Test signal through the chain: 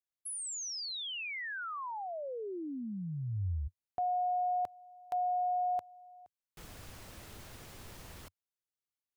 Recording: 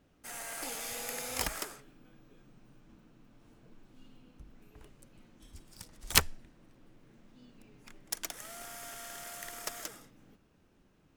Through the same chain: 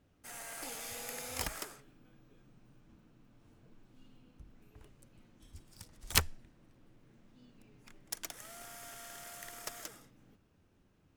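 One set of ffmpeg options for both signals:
-af "equalizer=f=92:t=o:w=0.83:g=7,volume=0.631"

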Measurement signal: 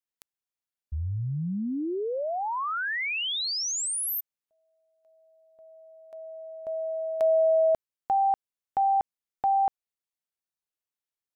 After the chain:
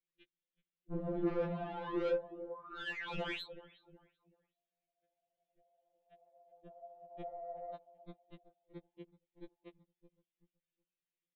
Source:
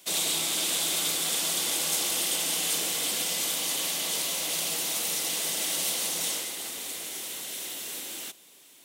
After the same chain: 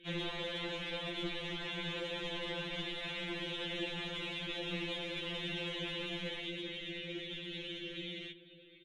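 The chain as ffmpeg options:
-filter_complex "[0:a]asuperstop=centerf=800:order=4:qfactor=0.55,aresample=8000,aeval=exprs='0.0158*(abs(mod(val(0)/0.0158+3,4)-2)-1)':c=same,aresample=44100,superequalizer=7b=3.55:10b=0.562,asplit=2[s0][s1];[s1]adelay=377,lowpass=f=1500:p=1,volume=0.15,asplit=2[s2][s3];[s3]adelay=377,lowpass=f=1500:p=1,volume=0.36,asplit=2[s4][s5];[s5]adelay=377,lowpass=f=1500:p=1,volume=0.36[s6];[s2][s4][s6]amix=inputs=3:normalize=0[s7];[s0][s7]amix=inputs=2:normalize=0,aeval=exprs='0.0631*(cos(1*acos(clip(val(0)/0.0631,-1,1)))-cos(1*PI/2))+0.0141*(cos(3*acos(clip(val(0)/0.0631,-1,1)))-cos(3*PI/2))+0.0224*(cos(5*acos(clip(val(0)/0.0631,-1,1)))-cos(5*PI/2))+0.00158*(cos(6*acos(clip(val(0)/0.0631,-1,1)))-cos(6*PI/2))+0.00891*(cos(7*acos(clip(val(0)/0.0631,-1,1)))-cos(7*PI/2))':c=same,afftfilt=real='hypot(re,im)*cos(2*PI*random(0))':imag='hypot(re,im)*sin(2*PI*random(1))':win_size=512:overlap=0.75,lowshelf=f=220:g=10.5,asoftclip=type=tanh:threshold=0.0178,afftfilt=real='re*2.83*eq(mod(b,8),0)':imag='im*2.83*eq(mod(b,8),0)':win_size=2048:overlap=0.75,volume=2.24"

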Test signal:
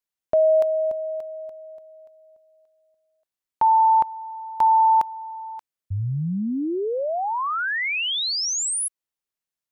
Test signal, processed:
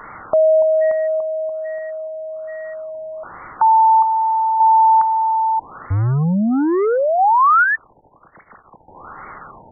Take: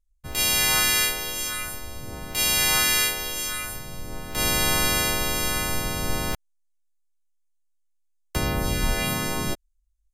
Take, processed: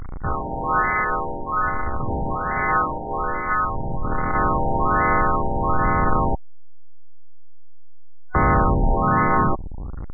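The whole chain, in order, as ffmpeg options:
-af "aeval=exprs='val(0)+0.5*0.0282*sgn(val(0))':c=same,superequalizer=9b=2:10b=3.16:13b=1.58:14b=3.55:16b=0.562,asoftclip=type=tanh:threshold=0.126,afftfilt=real='re*lt(b*sr/1024,920*pow(2300/920,0.5+0.5*sin(2*PI*1.2*pts/sr)))':imag='im*lt(b*sr/1024,920*pow(2300/920,0.5+0.5*sin(2*PI*1.2*pts/sr)))':win_size=1024:overlap=0.75,volume=2.51"

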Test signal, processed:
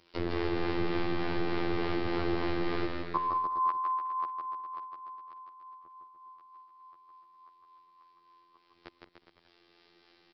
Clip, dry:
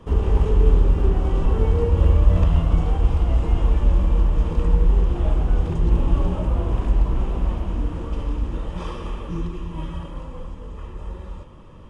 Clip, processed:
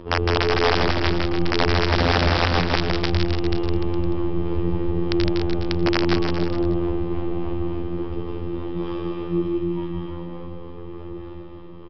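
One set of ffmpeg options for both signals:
-filter_complex "[0:a]acrossover=split=2500[s0][s1];[s1]acompressor=threshold=0.00794:ratio=4:attack=1:release=60[s2];[s0][s2]amix=inputs=2:normalize=0,equalizer=f=360:w=2.8:g=13,acompressor=mode=upward:threshold=0.0224:ratio=2.5,afftfilt=real='hypot(re,im)*cos(PI*b)':imag='0':win_size=2048:overlap=0.75,asplit=2[s3][s4];[s4]adelay=204.1,volume=0.141,highshelf=f=4000:g=-4.59[s5];[s3][s5]amix=inputs=2:normalize=0,aresample=11025,aeval=exprs='(mod(3.35*val(0)+1,2)-1)/3.35':c=same,aresample=44100,acrossover=split=470[s6][s7];[s6]aeval=exprs='val(0)*(1-0.5/2+0.5/2*cos(2*PI*3.4*n/s))':c=same[s8];[s7]aeval=exprs='val(0)*(1-0.5/2-0.5/2*cos(2*PI*3.4*n/s))':c=same[s9];[s8][s9]amix=inputs=2:normalize=0,asplit=2[s10][s11];[s11]aecho=0:1:160|296|411.6|509.9|593.4:0.631|0.398|0.251|0.158|0.1[s12];[s10][s12]amix=inputs=2:normalize=0,volume=1.26"

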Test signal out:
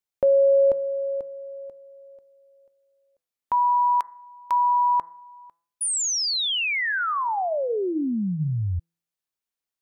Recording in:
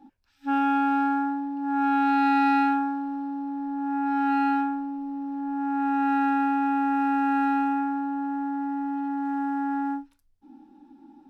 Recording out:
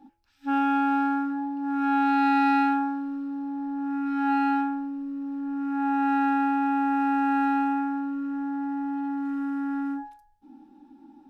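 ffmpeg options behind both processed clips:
-af "bandreject=f=167.2:t=h:w=4,bandreject=f=334.4:t=h:w=4,bandreject=f=501.6:t=h:w=4,bandreject=f=668.8:t=h:w=4,bandreject=f=836:t=h:w=4,bandreject=f=1003.2:t=h:w=4,bandreject=f=1170.4:t=h:w=4,bandreject=f=1337.6:t=h:w=4,bandreject=f=1504.8:t=h:w=4,bandreject=f=1672:t=h:w=4,bandreject=f=1839.2:t=h:w=4,bandreject=f=2006.4:t=h:w=4"

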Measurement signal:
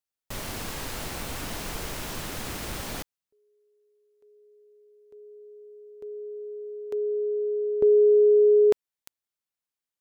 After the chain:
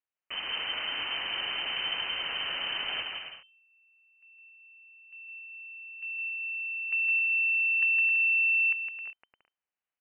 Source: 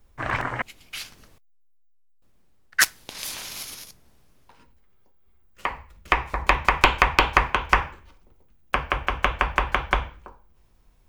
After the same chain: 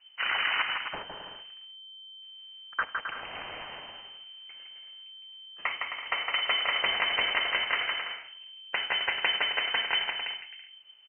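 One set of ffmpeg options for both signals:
-af "acompressor=threshold=0.0398:ratio=6:attack=28:release=112:knee=1:detection=peak,aresample=16000,asoftclip=type=hard:threshold=0.0944,aresample=44100,aecho=1:1:160|264|331.6|375.5|404.1:0.631|0.398|0.251|0.158|0.1,lowpass=f=2600:t=q:w=0.5098,lowpass=f=2600:t=q:w=0.6013,lowpass=f=2600:t=q:w=0.9,lowpass=f=2600:t=q:w=2.563,afreqshift=-3100"

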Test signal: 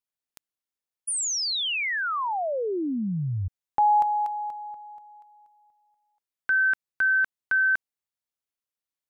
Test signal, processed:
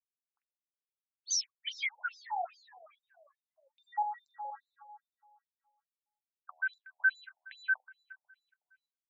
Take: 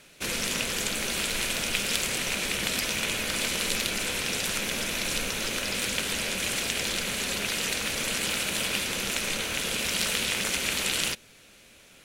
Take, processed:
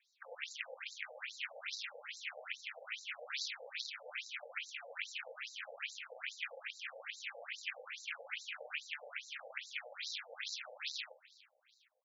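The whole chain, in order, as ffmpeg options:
-filter_complex "[0:a]bandreject=f=2900:w=11,afwtdn=0.0282,highshelf=f=5800:g=6,acrossover=split=390|1500[s0][s1][s2];[s1]flanger=delay=5.3:depth=3.6:regen=-74:speed=0.77:shape=triangular[s3];[s2]alimiter=limit=0.0841:level=0:latency=1:release=209[s4];[s0][s3][s4]amix=inputs=3:normalize=0,flanger=delay=6.7:depth=2.8:regen=58:speed=0.23:shape=sinusoidal,asplit=2[s5][s6];[s6]adelay=45,volume=0.211[s7];[s5][s7]amix=inputs=2:normalize=0,asplit=2[s8][s9];[s9]aecho=0:1:368|736|1104:0.0794|0.0373|0.0175[s10];[s8][s10]amix=inputs=2:normalize=0,afftfilt=real='re*between(b*sr/1024,610*pow(5400/610,0.5+0.5*sin(2*PI*2.4*pts/sr))/1.41,610*pow(5400/610,0.5+0.5*sin(2*PI*2.4*pts/sr))*1.41)':imag='im*between(b*sr/1024,610*pow(5400/610,0.5+0.5*sin(2*PI*2.4*pts/sr))/1.41,610*pow(5400/610,0.5+0.5*sin(2*PI*2.4*pts/sr))*1.41)':win_size=1024:overlap=0.75,volume=1.19"

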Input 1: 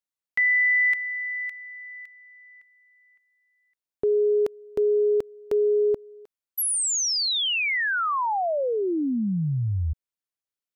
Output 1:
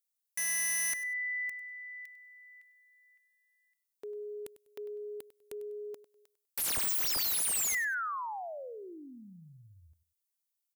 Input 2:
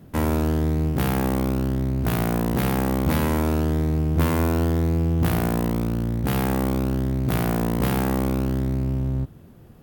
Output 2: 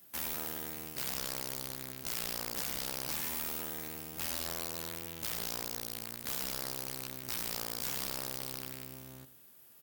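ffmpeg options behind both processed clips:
-filter_complex "[0:a]acrossover=split=3000[s0][s1];[s1]acompressor=threshold=0.0178:ratio=4:attack=1:release=60[s2];[s0][s2]amix=inputs=2:normalize=0,aderivative,aeval=exprs='(mod(42.2*val(0)+1,2)-1)/42.2':c=same,asplit=2[s3][s4];[s4]aecho=0:1:99|198:0.168|0.0403[s5];[s3][s5]amix=inputs=2:normalize=0,volume=1.68"

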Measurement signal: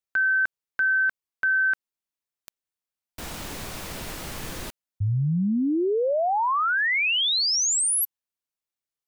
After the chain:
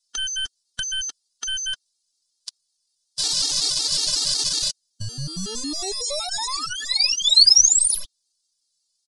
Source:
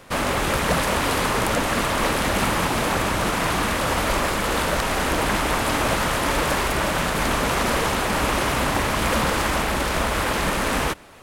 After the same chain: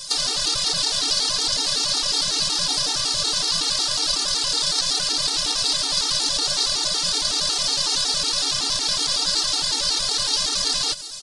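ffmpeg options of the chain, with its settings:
-filter_complex "[0:a]aeval=exprs='if(lt(val(0),0),0.251*val(0),val(0))':c=same,acrossover=split=5100[s0][s1];[s1]acompressor=threshold=0.00501:ratio=4:attack=1:release=60[s2];[s0][s2]amix=inputs=2:normalize=0,asplit=2[s3][s4];[s4]acrusher=samples=29:mix=1:aa=0.000001,volume=0.316[s5];[s3][s5]amix=inputs=2:normalize=0,tiltshelf=f=880:g=-7,aecho=1:1:6.8:0.6,acompressor=threshold=0.0282:ratio=8:attack=14:release=51:knee=1:detection=peak,highshelf=f=3200:t=q:w=3:g=13.5,volume=3.35,asoftclip=hard,volume=0.299,aresample=22050,aresample=44100,afftfilt=real='re*gt(sin(2*PI*5.4*pts/sr)*(1-2*mod(floor(b*sr/1024/240),2)),0)':imag='im*gt(sin(2*PI*5.4*pts/sr)*(1-2*mod(floor(b*sr/1024/240),2)),0)':win_size=1024:overlap=0.75,volume=1.58"

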